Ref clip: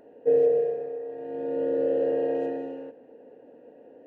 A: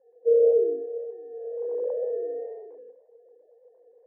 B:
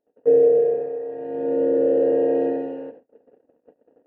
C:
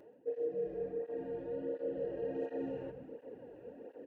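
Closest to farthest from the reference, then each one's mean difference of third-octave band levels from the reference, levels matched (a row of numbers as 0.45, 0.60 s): B, C, A; 2.0, 5.0, 7.0 dB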